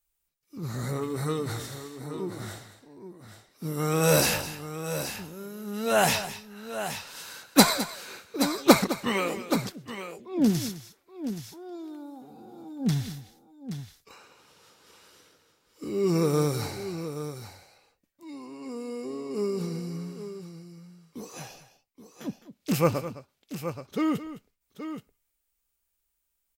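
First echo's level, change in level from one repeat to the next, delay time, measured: -14.0 dB, no steady repeat, 0.21 s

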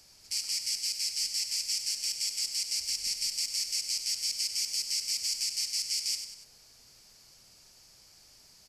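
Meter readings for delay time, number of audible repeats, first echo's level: 96 ms, 3, -8.5 dB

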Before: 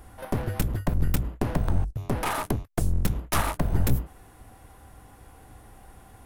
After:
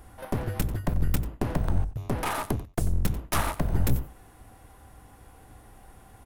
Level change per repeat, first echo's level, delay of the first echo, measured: no steady repeat, -16.5 dB, 91 ms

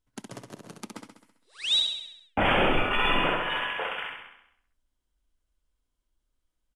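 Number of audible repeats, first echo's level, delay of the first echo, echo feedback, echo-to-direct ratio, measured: 6, -5.0 dB, 66 ms, 56%, -3.5 dB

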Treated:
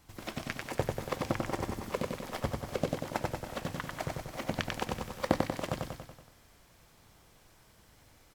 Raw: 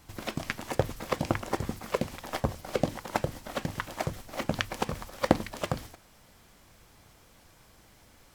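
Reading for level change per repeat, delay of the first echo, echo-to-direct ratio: -4.5 dB, 94 ms, -1.0 dB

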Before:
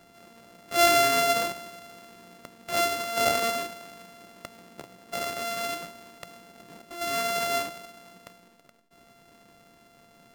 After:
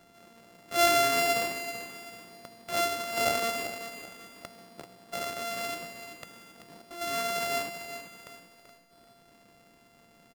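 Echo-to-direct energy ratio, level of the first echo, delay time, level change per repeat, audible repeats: -9.5 dB, -10.0 dB, 0.385 s, -8.5 dB, 3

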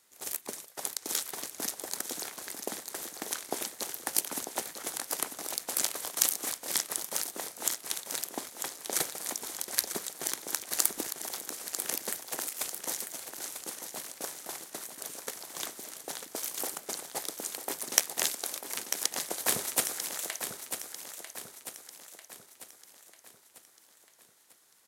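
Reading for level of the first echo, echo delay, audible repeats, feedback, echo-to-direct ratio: -8.5 dB, 0.945 s, 5, 49%, -7.5 dB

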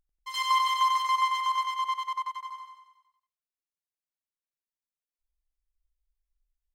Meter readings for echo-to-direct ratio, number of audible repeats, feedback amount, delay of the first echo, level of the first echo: -2.0 dB, 6, 54%, 93 ms, -3.5 dB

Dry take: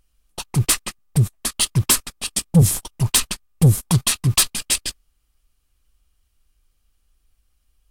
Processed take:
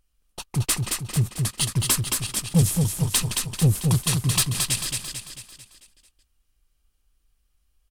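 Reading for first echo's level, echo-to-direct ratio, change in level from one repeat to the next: -4.0 dB, -3.0 dB, -6.0 dB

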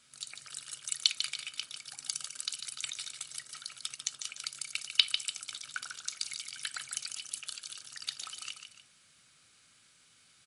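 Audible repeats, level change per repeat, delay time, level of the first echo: 2, -8.0 dB, 0.147 s, -8.0 dB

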